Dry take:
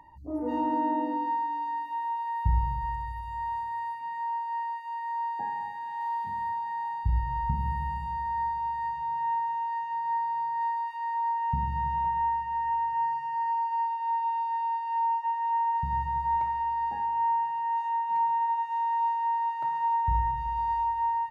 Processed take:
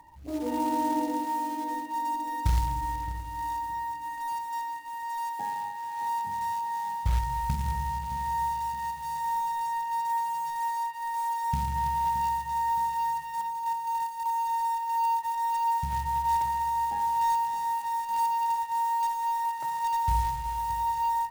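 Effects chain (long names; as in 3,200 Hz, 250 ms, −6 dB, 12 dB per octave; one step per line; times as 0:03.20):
0:13.41–0:14.26: compressor whose output falls as the input rises −31 dBFS, ratio −0.5
floating-point word with a short mantissa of 2 bits
on a send: feedback echo with a band-pass in the loop 619 ms, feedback 52%, band-pass 340 Hz, level −8 dB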